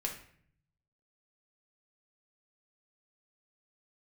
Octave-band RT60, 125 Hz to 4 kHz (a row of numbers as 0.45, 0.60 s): 1.3, 0.90, 0.65, 0.55, 0.60, 0.45 s